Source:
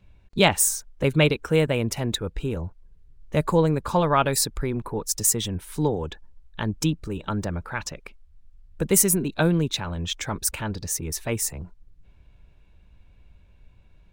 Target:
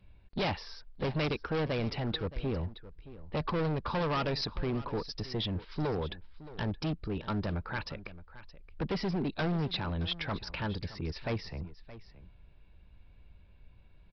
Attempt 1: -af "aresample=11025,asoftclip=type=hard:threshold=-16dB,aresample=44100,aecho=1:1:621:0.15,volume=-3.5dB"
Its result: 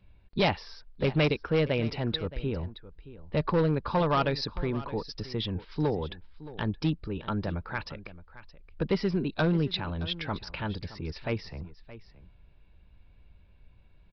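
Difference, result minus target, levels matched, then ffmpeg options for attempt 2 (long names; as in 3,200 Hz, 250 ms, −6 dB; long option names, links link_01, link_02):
hard clipping: distortion −8 dB
-af "aresample=11025,asoftclip=type=hard:threshold=-25dB,aresample=44100,aecho=1:1:621:0.15,volume=-3.5dB"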